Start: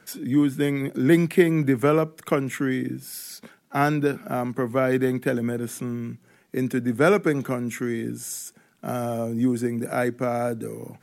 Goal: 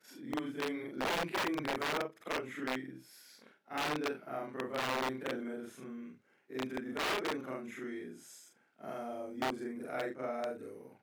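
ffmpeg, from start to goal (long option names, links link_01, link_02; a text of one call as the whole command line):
ffmpeg -i in.wav -filter_complex "[0:a]afftfilt=real='re':imag='-im':win_size=4096:overlap=0.75,aeval=exprs='(mod(8.91*val(0)+1,2)-1)/8.91':channel_layout=same,acrossover=split=250 4700:gain=0.224 1 0.251[link_01][link_02][link_03];[link_01][link_02][link_03]amix=inputs=3:normalize=0,volume=-7.5dB" out.wav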